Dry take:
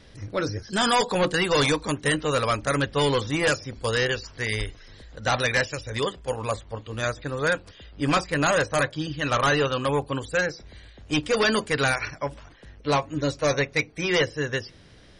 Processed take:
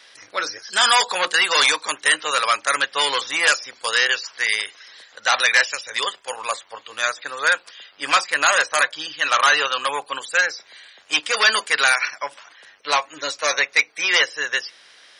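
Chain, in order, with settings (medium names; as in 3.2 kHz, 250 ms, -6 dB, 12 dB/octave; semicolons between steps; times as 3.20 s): high-pass 1.1 kHz 12 dB/octave; trim +9 dB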